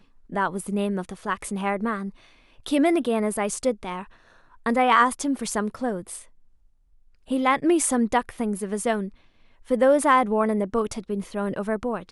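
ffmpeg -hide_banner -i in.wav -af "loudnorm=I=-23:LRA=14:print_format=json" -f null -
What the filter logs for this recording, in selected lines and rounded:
"input_i" : "-24.0",
"input_tp" : "-5.9",
"input_lra" : "2.6",
"input_thresh" : "-34.8",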